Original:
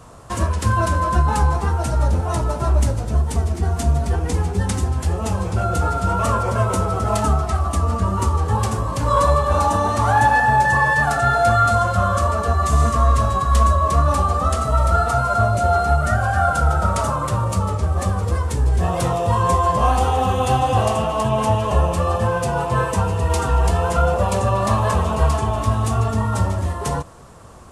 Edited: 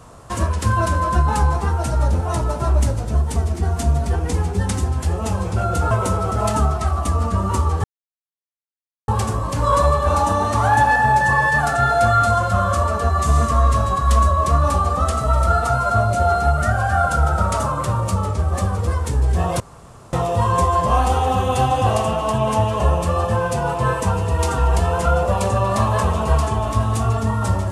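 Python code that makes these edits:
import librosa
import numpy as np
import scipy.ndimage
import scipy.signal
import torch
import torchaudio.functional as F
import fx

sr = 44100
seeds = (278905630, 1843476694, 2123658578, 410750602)

y = fx.edit(x, sr, fx.cut(start_s=5.91, length_s=0.68),
    fx.insert_silence(at_s=8.52, length_s=1.24),
    fx.insert_room_tone(at_s=19.04, length_s=0.53), tone=tone)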